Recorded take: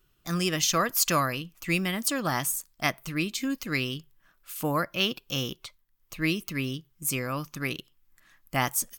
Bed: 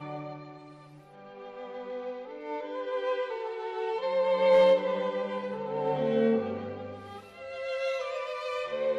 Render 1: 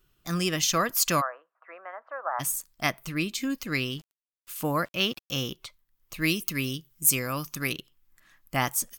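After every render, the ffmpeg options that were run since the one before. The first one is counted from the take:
-filter_complex "[0:a]asplit=3[a][b][c];[a]afade=t=out:st=1.2:d=0.02[d];[b]asuperpass=centerf=940:order=8:qfactor=0.91,afade=t=in:st=1.2:d=0.02,afade=t=out:st=2.39:d=0.02[e];[c]afade=t=in:st=2.39:d=0.02[f];[d][e][f]amix=inputs=3:normalize=0,asettb=1/sr,asplit=3[g][h][i];[g]atrim=end=3.904[j];[h]atrim=start=3.9:end=5.48,asetpts=PTS-STARTPTS,afade=t=in:d=0.004:c=qsin,afade=t=out:st=1.576:d=0.004:c=qsin,aeval=exprs='val(0)*gte(abs(val(0)),0.00355)':c=same[k];[i]atrim=start=5.476[l];[j][k]acrossfade=d=0.004:c1=hsin:c2=qsin[m];[m][l]acrossfade=d=0.004:c1=qsin:c2=hsin,asettb=1/sr,asplit=3[n][o][p];[n]atrim=end=6.144[q];[o]atrim=start=6.14:end=7.73,asetpts=PTS-STARTPTS,afade=t=in:d=0.004:c=qsin,afade=t=out:st=1.586:d=0.004:c=qsin,highshelf=f=4.6k:g=10[r];[p]atrim=start=7.726[s];[q][r]acrossfade=d=0.004:c1=hsin:c2=qsin[t];[t][s]acrossfade=d=0.004:c1=qsin:c2=hsin"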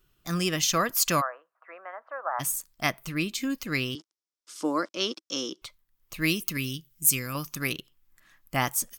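-filter_complex "[0:a]asettb=1/sr,asplit=3[a][b][c];[a]atrim=end=3.954[d];[b]atrim=start=3.95:end=5.62,asetpts=PTS-STARTPTS,afade=t=in:d=0.004:c=qsin,afade=t=out:st=1.666:d=0.004:c=qsin,highpass=f=250:w=0.5412,highpass=f=250:w=1.3066,equalizer=f=320:t=q:w=4:g=6,equalizer=f=730:t=q:w=4:g=-6,equalizer=f=1.8k:t=q:w=4:g=-5,equalizer=f=2.6k:t=q:w=4:g=-9,equalizer=f=5.4k:t=q:w=4:g=8,lowpass=f=8.5k:w=0.5412,lowpass=f=8.5k:w=1.3066[e];[c]atrim=start=5.616[f];[d][e]acrossfade=d=0.004:c1=hsin:c2=qsin[g];[g][f]acrossfade=d=0.004:c1=qsin:c2=hsin,asettb=1/sr,asplit=3[h][i][j];[h]atrim=end=6.574[k];[i]atrim=start=6.57:end=7.35,asetpts=PTS-STARTPTS,afade=t=in:d=0.004:c=qsin,afade=t=out:st=0.776:d=0.004:c=qsin,equalizer=f=710:w=0.8:g=-10[l];[j]atrim=start=7.346[m];[k][l]acrossfade=d=0.004:c1=hsin:c2=qsin[n];[n][m]acrossfade=d=0.004:c1=qsin:c2=hsin"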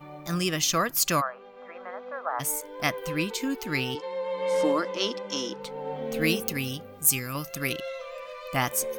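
-filter_complex "[1:a]volume=-5dB[a];[0:a][a]amix=inputs=2:normalize=0"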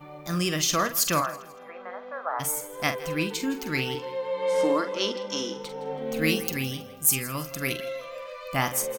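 -filter_complex "[0:a]asplit=2[a][b];[b]adelay=45,volume=-9.5dB[c];[a][c]amix=inputs=2:normalize=0,aecho=1:1:163|326|489:0.126|0.0491|0.0191"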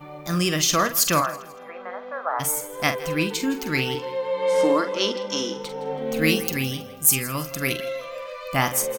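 -af "volume=4dB,alimiter=limit=-3dB:level=0:latency=1"

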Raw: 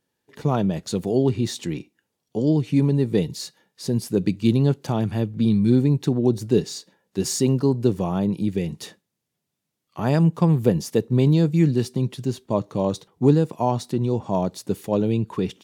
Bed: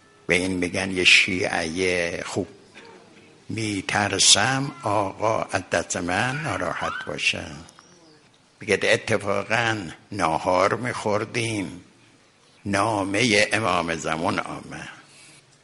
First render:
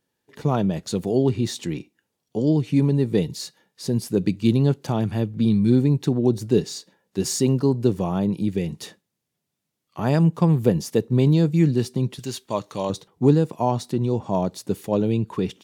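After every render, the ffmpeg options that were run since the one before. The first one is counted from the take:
-filter_complex "[0:a]asettb=1/sr,asplit=3[a][b][c];[a]atrim=end=12.194[d];[b]atrim=start=12.19:end=12.9,asetpts=PTS-STARTPTS,afade=t=in:d=0.004:c=qsin,afade=t=out:st=0.706:d=0.004:c=qsin,tiltshelf=f=850:g=-8[e];[c]atrim=start=12.896[f];[d][e]acrossfade=d=0.004:c1=hsin:c2=qsin[g];[g][f]acrossfade=d=0.004:c1=qsin:c2=hsin"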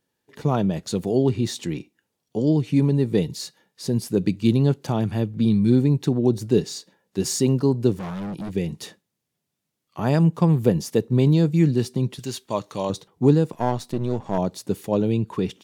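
-filter_complex "[0:a]asettb=1/sr,asplit=3[a][b][c];[a]atrim=end=7.954[d];[b]atrim=start=7.95:end=8.51,asetpts=PTS-STARTPTS,afade=t=in:d=0.004:c=qsin,afade=t=out:st=0.556:d=0.004:c=qsin,asoftclip=type=hard:threshold=-28.5dB[e];[c]atrim=start=8.506[f];[d][e]acrossfade=d=0.004:c1=hsin:c2=qsin[g];[g][f]acrossfade=d=0.004:c1=qsin:c2=hsin,asettb=1/sr,asplit=3[h][i][j];[h]atrim=end=13.534[k];[i]atrim=start=13.53:end=14.38,asetpts=PTS-STARTPTS,afade=t=in:d=0.004:c=qsin,afade=t=out:st=0.846:d=0.004:c=qsin,aeval=exprs='if(lt(val(0),0),0.447*val(0),val(0))':c=same[l];[j]atrim=start=14.376[m];[k][l]acrossfade=d=0.004:c1=hsin:c2=qsin[n];[n][m]acrossfade=d=0.004:c1=qsin:c2=hsin"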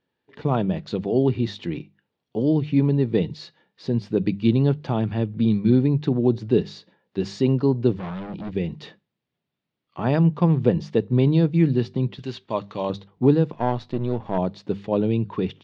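-af "lowpass=f=3.9k:w=0.5412,lowpass=f=3.9k:w=1.3066,bandreject=f=50:t=h:w=6,bandreject=f=100:t=h:w=6,bandreject=f=150:t=h:w=6,bandreject=f=200:t=h:w=6"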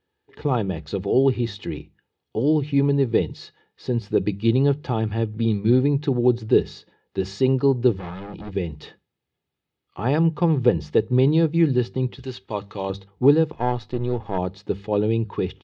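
-af "equalizer=f=66:w=3.1:g=14,aecho=1:1:2.4:0.38"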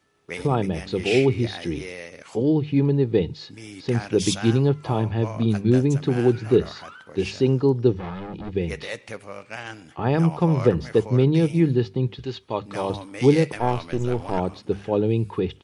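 -filter_complex "[1:a]volume=-13.5dB[a];[0:a][a]amix=inputs=2:normalize=0"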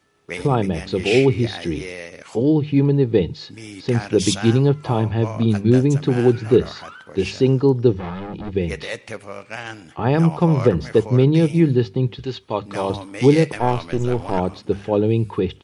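-af "volume=3.5dB,alimiter=limit=-3dB:level=0:latency=1"

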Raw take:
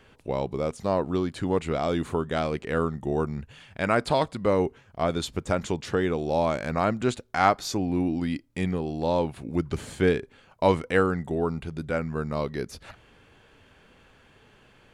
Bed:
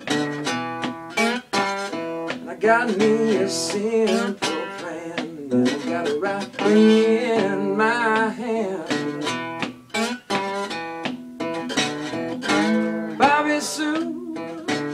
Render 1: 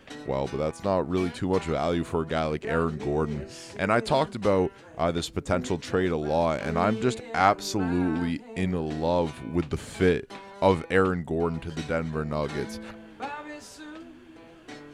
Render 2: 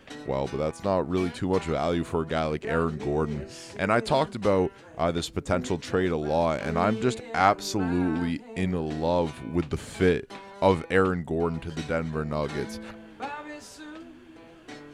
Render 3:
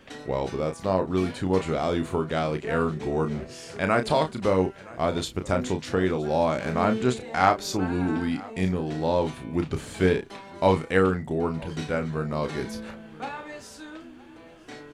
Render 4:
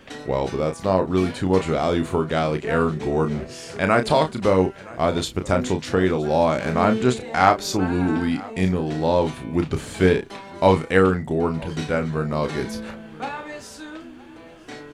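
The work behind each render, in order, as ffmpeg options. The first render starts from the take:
-filter_complex "[1:a]volume=-19dB[a];[0:a][a]amix=inputs=2:normalize=0"
-af anull
-filter_complex "[0:a]asplit=2[a][b];[b]adelay=32,volume=-7.5dB[c];[a][c]amix=inputs=2:normalize=0,aecho=1:1:969:0.0794"
-af "volume=4.5dB,alimiter=limit=-1dB:level=0:latency=1"

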